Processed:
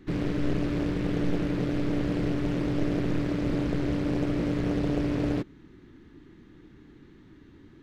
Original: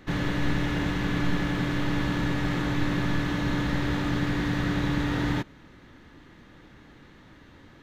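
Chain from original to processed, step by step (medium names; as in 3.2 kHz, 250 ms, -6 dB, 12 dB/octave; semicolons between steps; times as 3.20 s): resonant low shelf 460 Hz +6.5 dB, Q 3; loudspeaker Doppler distortion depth 0.9 ms; trim -8 dB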